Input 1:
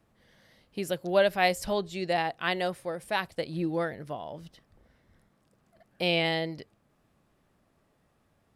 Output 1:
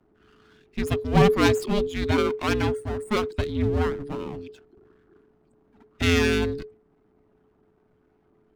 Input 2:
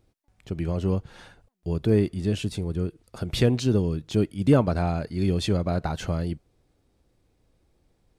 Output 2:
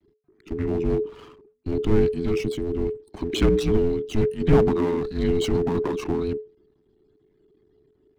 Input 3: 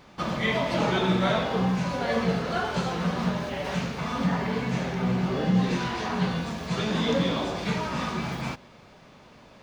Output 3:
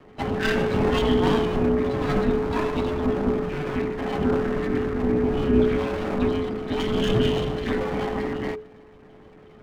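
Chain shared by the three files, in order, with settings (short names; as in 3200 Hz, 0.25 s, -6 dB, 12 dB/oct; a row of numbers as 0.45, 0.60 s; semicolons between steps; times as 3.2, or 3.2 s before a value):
loudest bins only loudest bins 64; half-wave rectifier; frequency shift -430 Hz; match loudness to -24 LUFS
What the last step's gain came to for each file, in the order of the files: +9.0, +6.0, +7.0 dB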